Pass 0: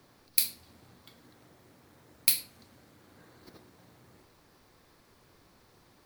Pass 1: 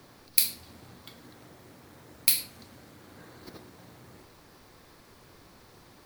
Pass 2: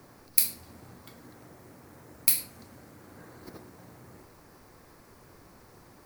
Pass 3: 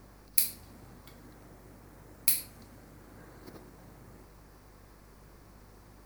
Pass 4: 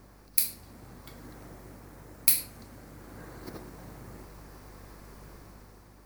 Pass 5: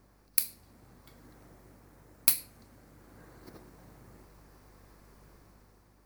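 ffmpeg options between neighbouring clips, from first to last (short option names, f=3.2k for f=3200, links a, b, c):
-af "alimiter=limit=-9.5dB:level=0:latency=1:release=151,volume=7dB"
-af "equalizer=f=3.5k:w=1.4:g=-9.5,volume=1dB"
-af "aeval=exprs='val(0)+0.00224*(sin(2*PI*50*n/s)+sin(2*PI*2*50*n/s)/2+sin(2*PI*3*50*n/s)/3+sin(2*PI*4*50*n/s)/4+sin(2*PI*5*50*n/s)/5)':c=same,volume=-3dB"
-af "dynaudnorm=f=120:g=11:m=6.5dB"
-af "aeval=exprs='0.794*(cos(1*acos(clip(val(0)/0.794,-1,1)))-cos(1*PI/2))+0.0708*(cos(7*acos(clip(val(0)/0.794,-1,1)))-cos(7*PI/2))':c=same"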